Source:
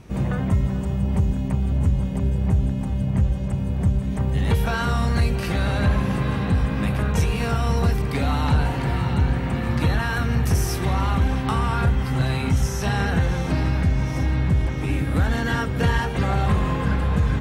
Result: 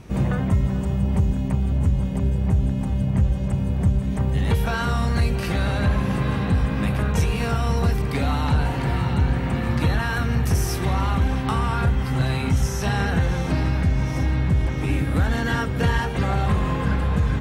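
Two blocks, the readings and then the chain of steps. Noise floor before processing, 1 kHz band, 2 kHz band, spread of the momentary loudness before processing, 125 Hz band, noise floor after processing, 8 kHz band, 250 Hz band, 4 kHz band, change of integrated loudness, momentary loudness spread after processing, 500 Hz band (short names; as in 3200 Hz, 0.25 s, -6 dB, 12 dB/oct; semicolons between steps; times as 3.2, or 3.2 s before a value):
-26 dBFS, 0.0 dB, 0.0 dB, 3 LU, 0.0 dB, -26 dBFS, 0.0 dB, 0.0 dB, 0.0 dB, 0.0 dB, 2 LU, 0.0 dB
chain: vocal rider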